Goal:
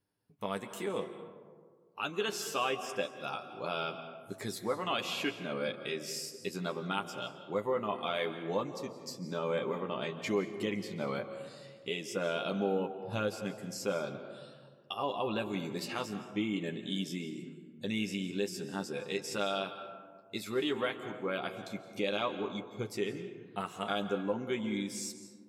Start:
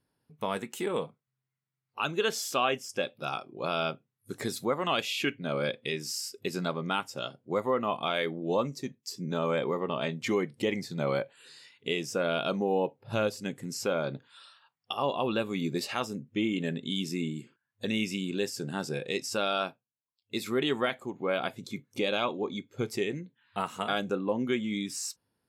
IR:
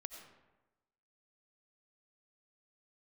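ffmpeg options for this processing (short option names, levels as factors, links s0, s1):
-filter_complex "[0:a]asplit=2[s0][s1];[1:a]atrim=start_sample=2205,asetrate=25137,aresample=44100,adelay=10[s2];[s1][s2]afir=irnorm=-1:irlink=0,volume=0.708[s3];[s0][s3]amix=inputs=2:normalize=0,volume=0.501"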